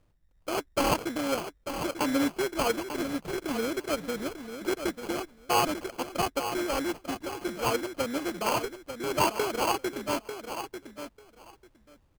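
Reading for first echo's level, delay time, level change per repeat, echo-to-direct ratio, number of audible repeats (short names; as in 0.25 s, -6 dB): -9.0 dB, 0.894 s, -16.0 dB, -9.0 dB, 2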